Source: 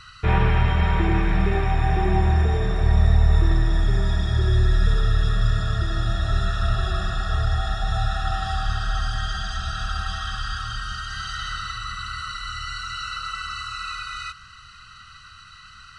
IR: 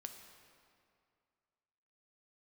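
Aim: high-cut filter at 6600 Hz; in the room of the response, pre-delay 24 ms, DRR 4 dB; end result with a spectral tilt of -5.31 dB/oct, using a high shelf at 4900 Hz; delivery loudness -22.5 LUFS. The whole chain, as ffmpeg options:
-filter_complex "[0:a]lowpass=6.6k,highshelf=f=4.9k:g=-6.5,asplit=2[a][b];[1:a]atrim=start_sample=2205,adelay=24[c];[b][c]afir=irnorm=-1:irlink=0,volume=0.5dB[d];[a][d]amix=inputs=2:normalize=0,volume=-0.5dB"

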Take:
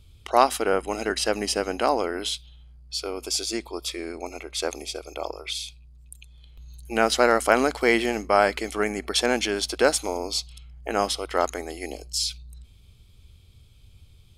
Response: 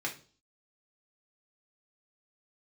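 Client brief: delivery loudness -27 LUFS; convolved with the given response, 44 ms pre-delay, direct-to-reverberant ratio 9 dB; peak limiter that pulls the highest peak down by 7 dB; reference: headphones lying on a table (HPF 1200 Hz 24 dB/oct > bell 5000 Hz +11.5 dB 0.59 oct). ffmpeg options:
-filter_complex "[0:a]alimiter=limit=-9dB:level=0:latency=1,asplit=2[a][b];[1:a]atrim=start_sample=2205,adelay=44[c];[b][c]afir=irnorm=-1:irlink=0,volume=-13dB[d];[a][d]amix=inputs=2:normalize=0,highpass=f=1.2k:w=0.5412,highpass=f=1.2k:w=1.3066,equalizer=f=5k:t=o:w=0.59:g=11.5,volume=-4dB"

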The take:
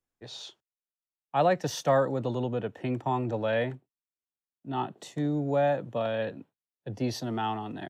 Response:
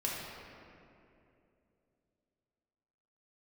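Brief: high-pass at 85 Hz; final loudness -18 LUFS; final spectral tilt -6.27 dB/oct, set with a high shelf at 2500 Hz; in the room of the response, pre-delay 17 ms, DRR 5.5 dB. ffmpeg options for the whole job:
-filter_complex "[0:a]highpass=85,highshelf=f=2.5k:g=-6,asplit=2[a][b];[1:a]atrim=start_sample=2205,adelay=17[c];[b][c]afir=irnorm=-1:irlink=0,volume=-10.5dB[d];[a][d]amix=inputs=2:normalize=0,volume=11dB"

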